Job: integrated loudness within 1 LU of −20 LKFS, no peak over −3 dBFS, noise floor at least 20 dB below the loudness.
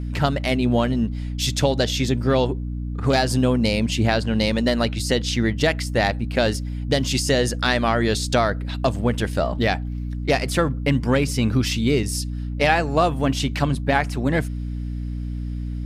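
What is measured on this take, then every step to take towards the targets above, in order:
mains hum 60 Hz; hum harmonics up to 300 Hz; level of the hum −25 dBFS; integrated loudness −22.0 LKFS; sample peak −3.0 dBFS; target loudness −20.0 LKFS
→ hum removal 60 Hz, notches 5
level +2 dB
brickwall limiter −3 dBFS

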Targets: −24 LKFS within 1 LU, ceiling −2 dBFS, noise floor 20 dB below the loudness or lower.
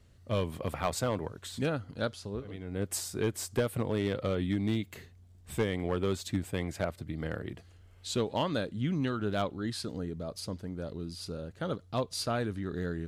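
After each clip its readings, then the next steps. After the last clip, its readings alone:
share of clipped samples 0.3%; peaks flattened at −21.0 dBFS; integrated loudness −34.0 LKFS; sample peak −21.0 dBFS; target loudness −24.0 LKFS
→ clipped peaks rebuilt −21 dBFS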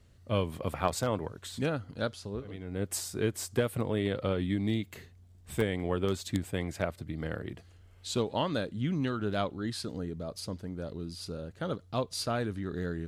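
share of clipped samples 0.0%; integrated loudness −33.5 LKFS; sample peak −12.0 dBFS; target loudness −24.0 LKFS
→ level +9.5 dB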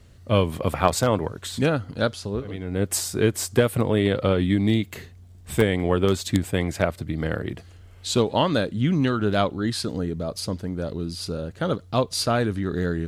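integrated loudness −24.0 LKFS; sample peak −2.5 dBFS; background noise floor −47 dBFS

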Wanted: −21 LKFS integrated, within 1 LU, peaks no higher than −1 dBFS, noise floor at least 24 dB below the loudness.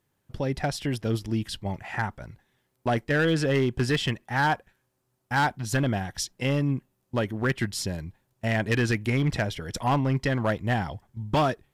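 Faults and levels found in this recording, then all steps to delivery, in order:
share of clipped samples 1.4%; peaks flattened at −17.5 dBFS; integrated loudness −27.0 LKFS; sample peak −17.5 dBFS; target loudness −21.0 LKFS
→ clipped peaks rebuilt −17.5 dBFS
level +6 dB

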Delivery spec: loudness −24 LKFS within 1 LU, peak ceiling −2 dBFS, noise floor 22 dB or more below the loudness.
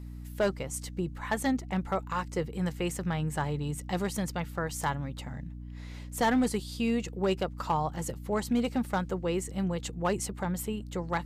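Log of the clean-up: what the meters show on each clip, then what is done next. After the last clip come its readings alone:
share of clipped samples 0.4%; peaks flattened at −20.0 dBFS; mains hum 60 Hz; hum harmonics up to 300 Hz; level of the hum −39 dBFS; integrated loudness −32.0 LKFS; sample peak −20.0 dBFS; target loudness −24.0 LKFS
→ clipped peaks rebuilt −20 dBFS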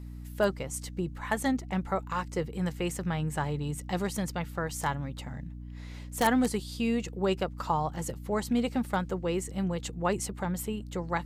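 share of clipped samples 0.0%; mains hum 60 Hz; hum harmonics up to 300 Hz; level of the hum −39 dBFS
→ hum removal 60 Hz, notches 5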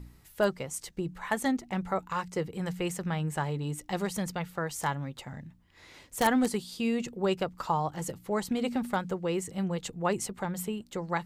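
mains hum none found; integrated loudness −32.0 LKFS; sample peak −11.0 dBFS; target loudness −24.0 LKFS
→ level +8 dB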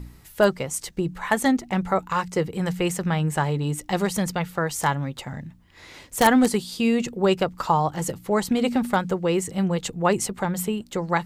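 integrated loudness −24.0 LKFS; sample peak −3.0 dBFS; background noise floor −49 dBFS

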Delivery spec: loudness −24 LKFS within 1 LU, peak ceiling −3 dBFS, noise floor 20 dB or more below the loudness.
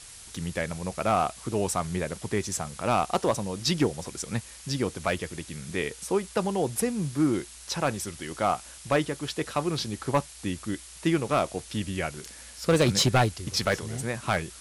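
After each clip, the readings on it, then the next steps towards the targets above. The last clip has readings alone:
share of clipped samples 0.4%; peaks flattened at −15.0 dBFS; background noise floor −46 dBFS; target noise floor −49 dBFS; integrated loudness −28.5 LKFS; sample peak −15.0 dBFS; target loudness −24.0 LKFS
→ clipped peaks rebuilt −15 dBFS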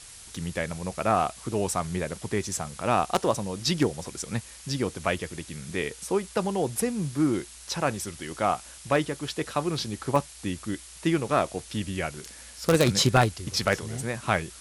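share of clipped samples 0.0%; background noise floor −46 dBFS; target noise floor −48 dBFS
→ broadband denoise 6 dB, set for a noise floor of −46 dBFS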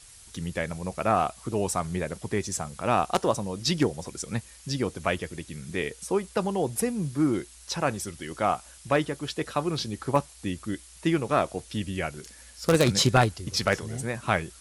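background noise floor −50 dBFS; integrated loudness −28.0 LKFS; sample peak −6.0 dBFS; target loudness −24.0 LKFS
→ level +4 dB
brickwall limiter −3 dBFS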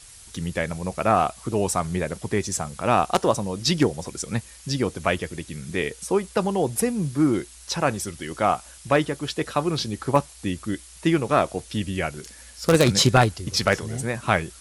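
integrated loudness −24.0 LKFS; sample peak −3.0 dBFS; background noise floor −46 dBFS

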